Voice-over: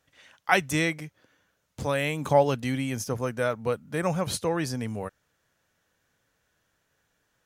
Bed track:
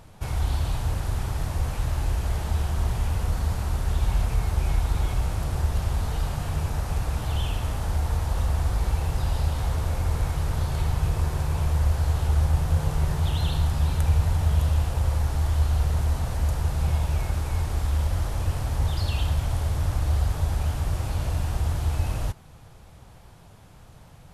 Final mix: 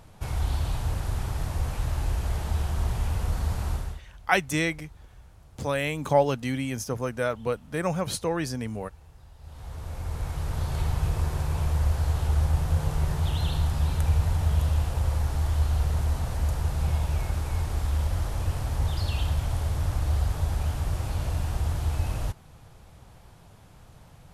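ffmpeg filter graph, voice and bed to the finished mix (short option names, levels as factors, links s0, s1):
-filter_complex "[0:a]adelay=3800,volume=0.944[s0];[1:a]volume=11.9,afade=t=out:st=3.71:d=0.3:silence=0.0668344,afade=t=in:st=9.39:d=1.41:silence=0.0668344[s1];[s0][s1]amix=inputs=2:normalize=0"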